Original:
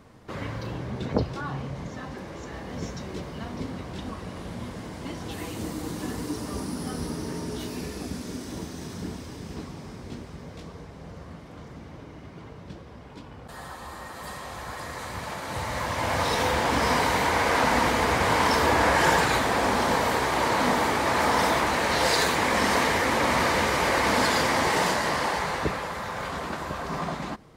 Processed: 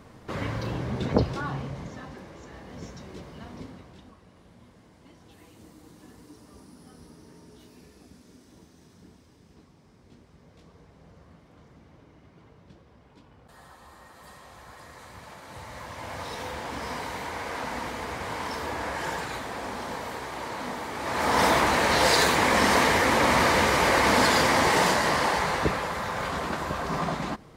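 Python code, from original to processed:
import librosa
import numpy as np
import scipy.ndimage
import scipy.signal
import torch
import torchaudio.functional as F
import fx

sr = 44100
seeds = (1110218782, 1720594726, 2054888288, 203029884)

y = fx.gain(x, sr, db=fx.line((1.29, 2.5), (2.37, -7.0), (3.58, -7.0), (4.2, -18.0), (9.78, -18.0), (10.9, -11.0), (20.89, -11.0), (21.43, 2.0)))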